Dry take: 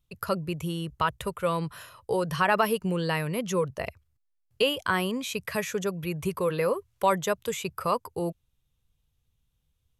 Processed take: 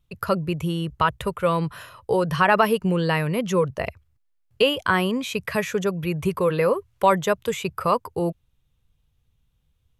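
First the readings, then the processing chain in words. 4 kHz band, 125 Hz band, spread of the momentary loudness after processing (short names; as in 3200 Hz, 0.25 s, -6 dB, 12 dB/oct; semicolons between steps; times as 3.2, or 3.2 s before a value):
+4.0 dB, +6.5 dB, 8 LU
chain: tone controls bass +1 dB, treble -6 dB; gain +5.5 dB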